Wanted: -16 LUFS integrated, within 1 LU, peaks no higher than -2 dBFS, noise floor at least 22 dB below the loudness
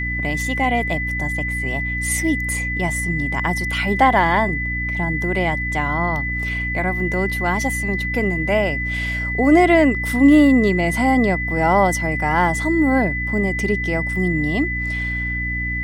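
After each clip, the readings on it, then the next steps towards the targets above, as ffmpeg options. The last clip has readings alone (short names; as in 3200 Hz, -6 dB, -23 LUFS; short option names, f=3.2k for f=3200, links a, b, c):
hum 60 Hz; harmonics up to 300 Hz; hum level -24 dBFS; steady tone 2000 Hz; tone level -23 dBFS; loudness -19.0 LUFS; peak -2.5 dBFS; loudness target -16.0 LUFS
-> -af "bandreject=f=60:t=h:w=4,bandreject=f=120:t=h:w=4,bandreject=f=180:t=h:w=4,bandreject=f=240:t=h:w=4,bandreject=f=300:t=h:w=4"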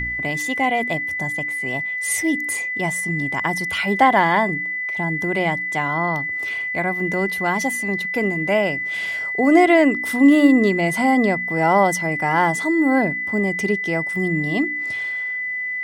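hum none; steady tone 2000 Hz; tone level -23 dBFS
-> -af "bandreject=f=2k:w=30"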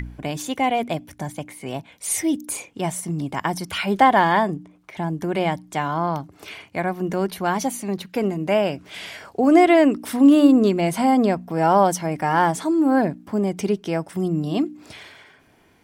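steady tone none; loudness -20.5 LUFS; peak -2.5 dBFS; loudness target -16.0 LUFS
-> -af "volume=4.5dB,alimiter=limit=-2dB:level=0:latency=1"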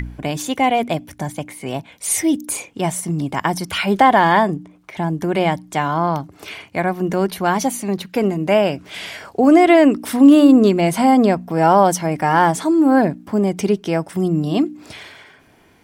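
loudness -16.5 LUFS; peak -2.0 dBFS; noise floor -51 dBFS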